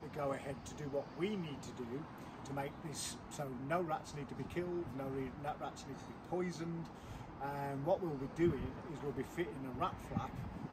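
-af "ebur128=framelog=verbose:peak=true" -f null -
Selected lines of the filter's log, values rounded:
Integrated loudness:
  I:         -42.1 LUFS
  Threshold: -52.1 LUFS
Loudness range:
  LRA:         3.5 LU
  Threshold: -62.1 LUFS
  LRA low:   -43.7 LUFS
  LRA high:  -40.3 LUFS
True peak:
  Peak:      -22.3 dBFS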